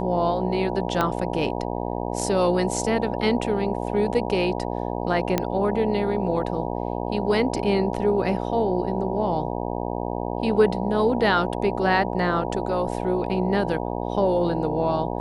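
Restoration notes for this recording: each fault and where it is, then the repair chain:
mains buzz 60 Hz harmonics 16 −28 dBFS
0:01.01: click −9 dBFS
0:05.38: click −7 dBFS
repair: click removal
hum removal 60 Hz, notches 16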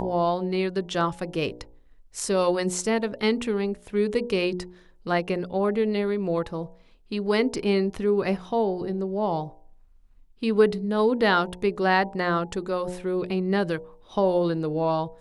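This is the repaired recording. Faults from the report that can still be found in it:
0:01.01: click

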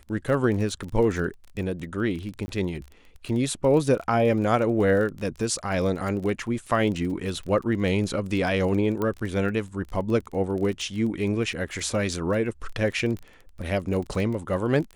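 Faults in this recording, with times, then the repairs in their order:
surface crackle 23 per second −31 dBFS
0:02.46–0:02.48: drop-out 20 ms
0:09.02: click −16 dBFS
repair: click removal
repair the gap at 0:02.46, 20 ms

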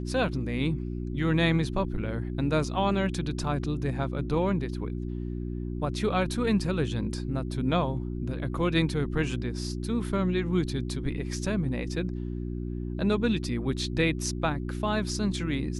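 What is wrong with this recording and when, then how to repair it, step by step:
mains hum 60 Hz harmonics 6 −33 dBFS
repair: hum removal 60 Hz, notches 6

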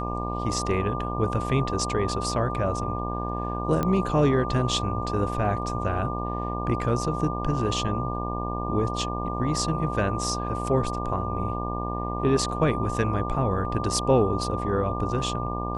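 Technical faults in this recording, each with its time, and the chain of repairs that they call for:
mains buzz 60 Hz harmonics 20 −31 dBFS
whistle 1,200 Hz −33 dBFS
0:03.83: click −13 dBFS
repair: click removal
notch filter 1,200 Hz, Q 30
hum removal 60 Hz, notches 20

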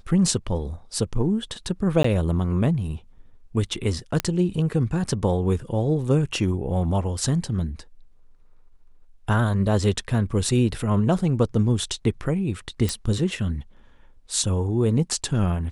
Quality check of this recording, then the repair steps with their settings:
0:02.03–0:02.04: drop-out 14 ms
0:04.20: click −8 dBFS
0:12.89: click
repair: click removal
repair the gap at 0:02.03, 14 ms

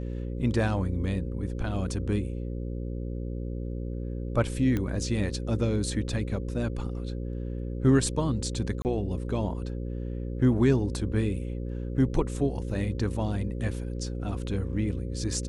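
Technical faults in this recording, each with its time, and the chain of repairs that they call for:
mains buzz 60 Hz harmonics 9 −33 dBFS
0:04.77: click −17 dBFS
0:08.82–0:08.85: drop-out 29 ms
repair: click removal
hum removal 60 Hz, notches 9
repair the gap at 0:08.82, 29 ms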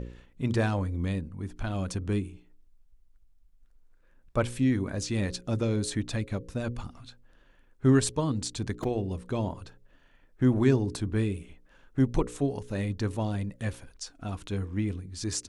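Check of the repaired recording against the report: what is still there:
none of them is left

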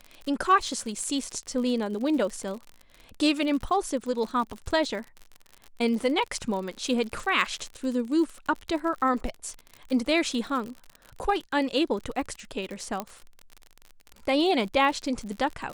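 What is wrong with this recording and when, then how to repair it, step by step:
surface crackle 56 per second −33 dBFS
0:03.70–0:03.71: drop-out 6.3 ms
0:13.00: click −16 dBFS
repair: click removal
repair the gap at 0:03.70, 6.3 ms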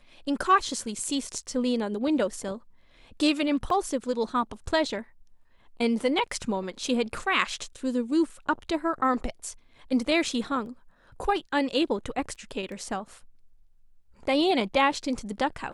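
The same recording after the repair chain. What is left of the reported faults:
none of them is left

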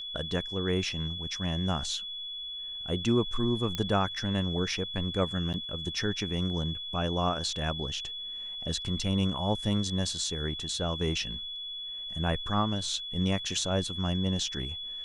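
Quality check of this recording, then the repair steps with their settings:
whistle 3,400 Hz −36 dBFS
0:03.75: click −17 dBFS
0:05.53–0:05.54: drop-out 8.6 ms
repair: click removal
notch filter 3,400 Hz, Q 30
repair the gap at 0:05.53, 8.6 ms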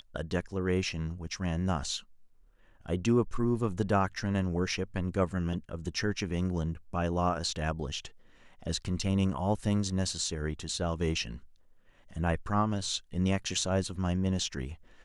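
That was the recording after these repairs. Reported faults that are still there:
none of them is left

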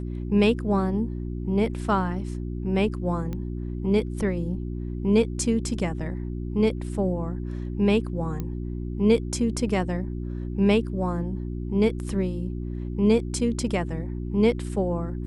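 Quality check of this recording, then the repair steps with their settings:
mains hum 60 Hz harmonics 6 −31 dBFS
0:03.33: click −21 dBFS
0:08.40: click −18 dBFS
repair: click removal
hum removal 60 Hz, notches 6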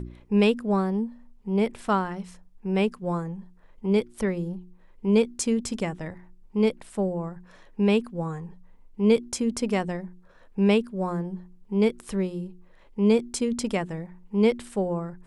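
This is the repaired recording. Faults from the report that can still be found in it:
none of them is left

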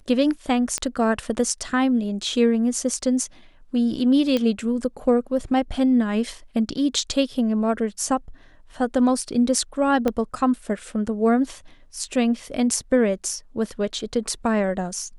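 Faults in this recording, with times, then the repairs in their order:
0:00.78: click −10 dBFS
0:04.37: click −11 dBFS
0:10.08: click −10 dBFS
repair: click removal

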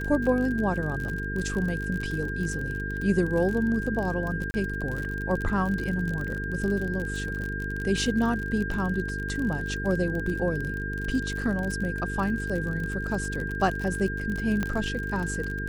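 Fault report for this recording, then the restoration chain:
mains buzz 50 Hz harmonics 9 −33 dBFS
surface crackle 45 per second −30 dBFS
whistle 1,600 Hz −33 dBFS
0:04.51–0:04.54: drop-out 30 ms
0:14.63: click −15 dBFS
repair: click removal
hum removal 50 Hz, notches 9
notch filter 1,600 Hz, Q 30
repair the gap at 0:04.51, 30 ms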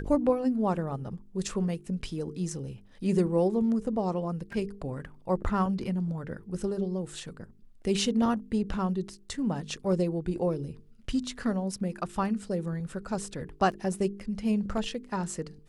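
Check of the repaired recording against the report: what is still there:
0:14.63: click

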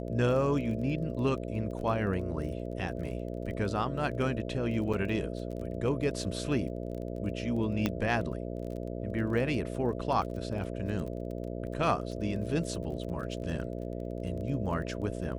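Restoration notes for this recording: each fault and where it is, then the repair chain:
mains buzz 60 Hz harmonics 11 −37 dBFS
surface crackle 21 per second −39 dBFS
0:04.93–0:04.94: drop-out 5.9 ms
0:07.86: click −14 dBFS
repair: click removal
hum removal 60 Hz, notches 11
repair the gap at 0:04.93, 5.9 ms

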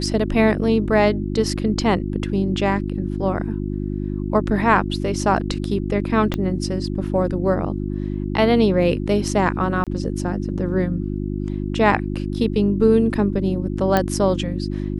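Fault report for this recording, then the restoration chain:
mains hum 50 Hz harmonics 7 −25 dBFS
0:06.34: click −10 dBFS
0:09.84–0:09.87: drop-out 27 ms
0:13.97: click −5 dBFS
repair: click removal
hum removal 50 Hz, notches 7
repair the gap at 0:09.84, 27 ms

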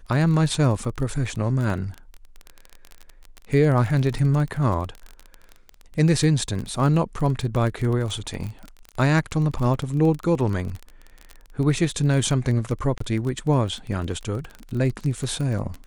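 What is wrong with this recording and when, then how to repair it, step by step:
surface crackle 22 per second −27 dBFS
0:12.98–0:13.00: drop-out 24 ms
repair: click removal
repair the gap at 0:12.98, 24 ms

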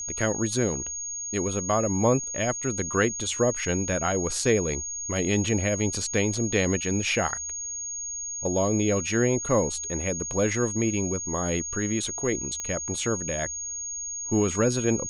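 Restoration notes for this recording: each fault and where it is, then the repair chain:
whistle 6,600 Hz −31 dBFS
0:12.60: click −18 dBFS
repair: click removal
notch filter 6,600 Hz, Q 30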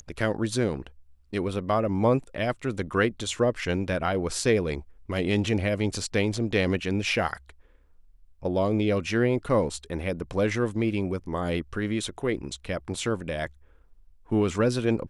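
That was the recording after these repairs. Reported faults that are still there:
none of them is left

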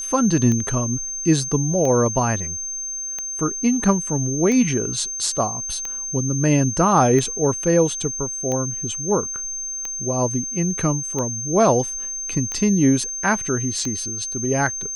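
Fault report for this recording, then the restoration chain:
scratch tick 45 rpm −14 dBFS
whistle 6,300 Hz −26 dBFS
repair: click removal
notch filter 6,300 Hz, Q 30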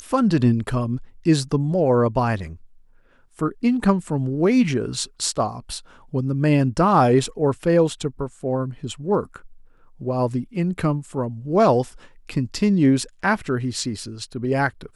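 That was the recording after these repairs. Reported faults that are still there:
none of them is left

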